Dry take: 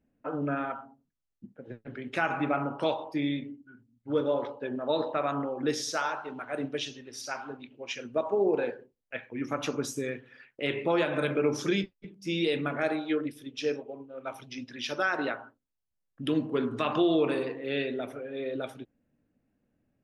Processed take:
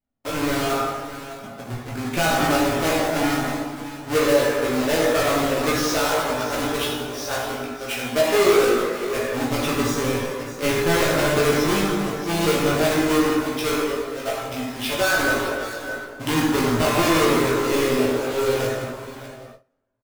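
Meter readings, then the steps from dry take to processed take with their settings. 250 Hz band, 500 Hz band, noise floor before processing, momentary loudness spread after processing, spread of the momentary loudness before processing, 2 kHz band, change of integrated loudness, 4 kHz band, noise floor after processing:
+8.5 dB, +9.5 dB, -81 dBFS, 11 LU, 14 LU, +11.0 dB, +9.5 dB, +12.0 dB, -39 dBFS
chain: half-waves squared off; on a send: echo 0.61 s -13.5 dB; on the sum: plate-style reverb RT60 1.8 s, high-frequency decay 0.6×, DRR -3 dB; gate with hold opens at -35 dBFS; in parallel at -1 dB: limiter -15 dBFS, peak gain reduction 9.5 dB; on the sum: chorus voices 6, 0.1 Hz, delay 18 ms, depth 1.6 ms

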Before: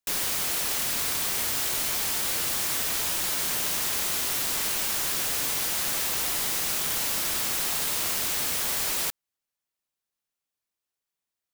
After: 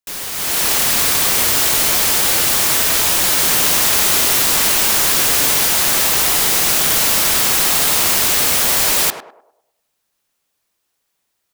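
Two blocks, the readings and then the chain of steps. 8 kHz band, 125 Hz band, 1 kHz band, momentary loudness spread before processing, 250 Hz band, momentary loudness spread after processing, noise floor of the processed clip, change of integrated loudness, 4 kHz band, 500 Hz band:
+12.5 dB, +13.0 dB, +13.5 dB, 0 LU, +13.0 dB, 1 LU, -72 dBFS, +13.0 dB, +13.0 dB, +14.0 dB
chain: on a send: narrowing echo 0.102 s, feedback 43%, band-pass 610 Hz, level -5 dB; on the sum: AGC gain up to 16 dB

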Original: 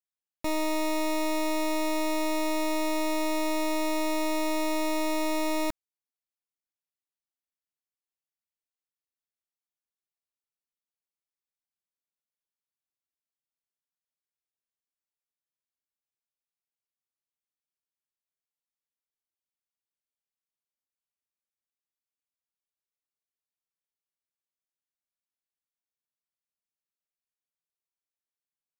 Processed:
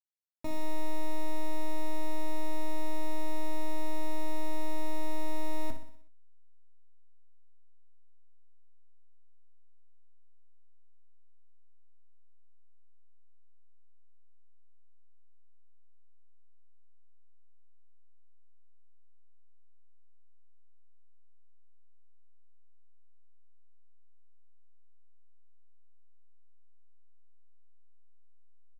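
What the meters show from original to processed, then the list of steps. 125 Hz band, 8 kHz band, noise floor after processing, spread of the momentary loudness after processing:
n/a, -13.5 dB, -48 dBFS, 1 LU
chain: tilt shelf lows +3.5 dB, about 830 Hz; vocal rider 0.5 s; resonator 130 Hz, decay 0.26 s, harmonics all, mix 90%; backlash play -49.5 dBFS; on a send: feedback echo 62 ms, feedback 53%, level -9.5 dB; on the sum: gain +3.5 dB

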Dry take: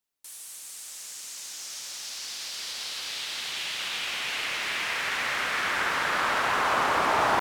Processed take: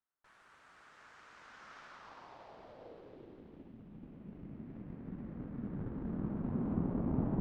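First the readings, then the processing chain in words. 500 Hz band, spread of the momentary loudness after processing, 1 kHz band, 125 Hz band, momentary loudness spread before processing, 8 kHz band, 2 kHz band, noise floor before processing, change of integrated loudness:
-13.0 dB, 20 LU, -25.5 dB, +8.0 dB, 14 LU, under -35 dB, -31.5 dB, -43 dBFS, -12.0 dB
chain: added harmonics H 4 -13 dB, 7 -23 dB, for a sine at -12 dBFS; low-pass sweep 1400 Hz -> 220 Hz, 1.85–3.83; gain -1.5 dB

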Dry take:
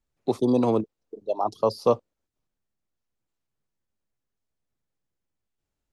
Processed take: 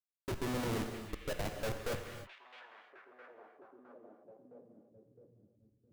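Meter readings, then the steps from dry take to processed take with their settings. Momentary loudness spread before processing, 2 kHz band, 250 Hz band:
11 LU, n/a, -14.5 dB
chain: median filter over 5 samples; band shelf 1100 Hz -14 dB 1.3 oct; Schmitt trigger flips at -32.5 dBFS; on a send: delay with a stepping band-pass 0.662 s, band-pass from 2500 Hz, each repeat -0.7 oct, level -8 dB; on the sum: non-linear reverb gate 0.33 s flat, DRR 5 dB; gain -5.5 dB

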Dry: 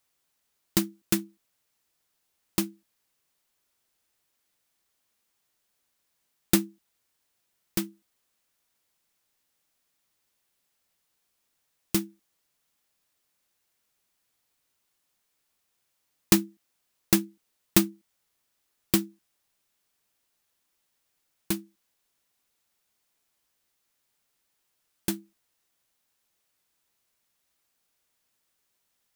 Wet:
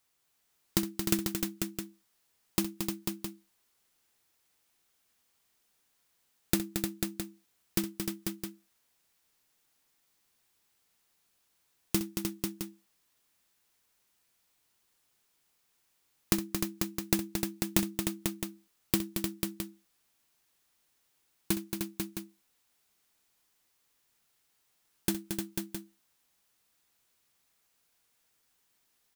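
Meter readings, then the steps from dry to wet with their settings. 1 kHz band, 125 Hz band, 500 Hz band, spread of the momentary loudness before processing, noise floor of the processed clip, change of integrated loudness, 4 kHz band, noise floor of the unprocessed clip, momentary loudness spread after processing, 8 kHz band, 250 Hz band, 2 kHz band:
-2.0 dB, -2.0 dB, -2.5 dB, 16 LU, -74 dBFS, -6.0 dB, -2.5 dB, -77 dBFS, 12 LU, -2.5 dB, -3.0 dB, -2.5 dB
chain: compressor 10:1, threshold -23 dBFS, peak gain reduction 10.5 dB; notch 580 Hz, Q 12; on a send: tapped delay 64/225/304/493/663 ms -13.5/-7/-6.5/-5.5/-10 dB

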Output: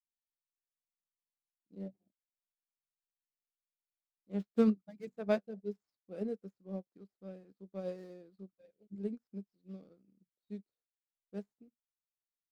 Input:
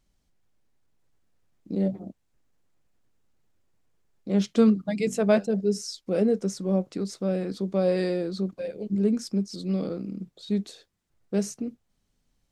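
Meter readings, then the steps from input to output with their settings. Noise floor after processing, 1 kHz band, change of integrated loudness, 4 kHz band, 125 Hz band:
under -85 dBFS, -12.5 dB, -12.0 dB, -21.0 dB, -17.0 dB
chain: median filter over 15 samples; upward expander 2.5:1, over -40 dBFS; gain -7 dB

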